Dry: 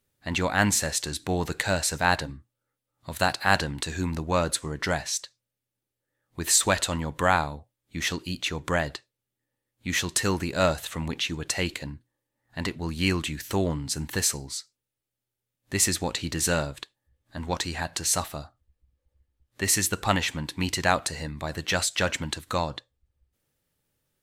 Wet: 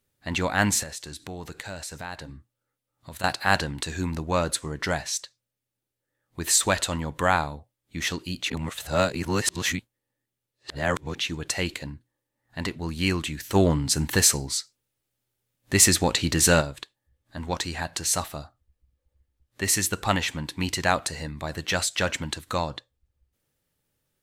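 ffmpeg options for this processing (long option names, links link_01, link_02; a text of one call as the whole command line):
ffmpeg -i in.wav -filter_complex "[0:a]asettb=1/sr,asplit=3[link_01][link_02][link_03];[link_01]atrim=end=0.834[link_04];[link_02]atrim=start=0.83:end=3.24,asetpts=PTS-STARTPTS,afade=type=in:duration=0.004:curve=qsin,afade=type=out:start_time=2.406:duration=0.004:curve=qsin,acompressor=threshold=-38dB:ratio=2.5:attack=3.2:release=140:knee=1:detection=peak[link_05];[link_03]atrim=start=3.236[link_06];[link_04][link_05]acrossfade=duration=0.004:curve1=hsin:curve2=qsin[link_07];[link_07][link_06]acrossfade=duration=0.004:curve1=qsin:curve2=hsin,asplit=3[link_08][link_09][link_10];[link_08]afade=type=out:start_time=13.54:duration=0.02[link_11];[link_09]acontrast=59,afade=type=in:start_time=13.54:duration=0.02,afade=type=out:start_time=16.6:duration=0.02[link_12];[link_10]afade=type=in:start_time=16.6:duration=0.02[link_13];[link_11][link_12][link_13]amix=inputs=3:normalize=0,asplit=3[link_14][link_15][link_16];[link_14]atrim=end=8.502[link_17];[link_15]atrim=start=8.498:end=11.152,asetpts=PTS-STARTPTS,areverse[link_18];[link_16]atrim=start=11.148[link_19];[link_17][link_18]acrossfade=duration=0.004:curve1=hsin:curve2=hsin[link_20];[link_20][link_19]acrossfade=duration=0.004:curve1=hsin:curve2=hsin" out.wav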